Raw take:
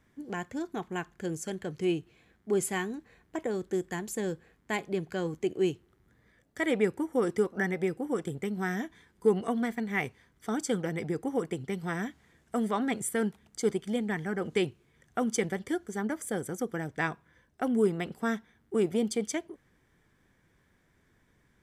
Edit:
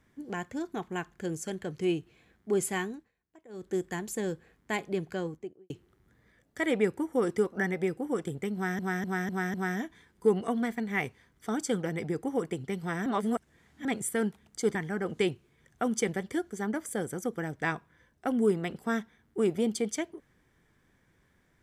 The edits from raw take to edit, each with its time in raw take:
2.84–3.76 s: dip -22 dB, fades 0.28 s
5.05–5.70 s: studio fade out
8.54–8.79 s: loop, 5 plays
12.06–12.85 s: reverse
13.75–14.11 s: delete

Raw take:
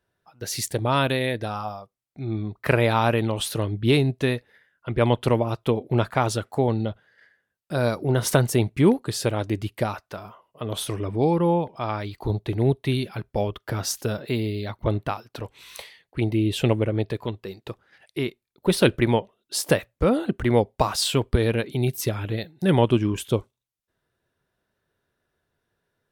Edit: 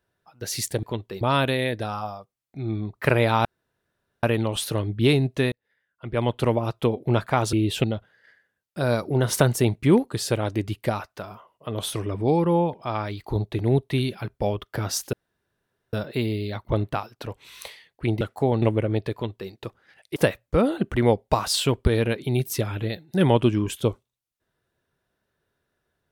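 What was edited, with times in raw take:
3.07 s: insert room tone 0.78 s
4.36–5.46 s: fade in linear
6.37–6.78 s: swap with 16.35–16.66 s
14.07 s: insert room tone 0.80 s
17.17–17.55 s: copy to 0.83 s
18.20–19.64 s: delete

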